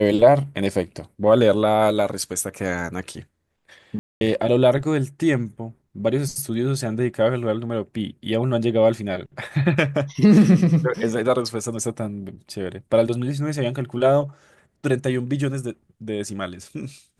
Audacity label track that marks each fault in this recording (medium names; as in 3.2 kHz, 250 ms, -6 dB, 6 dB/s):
3.990000	4.210000	dropout 221 ms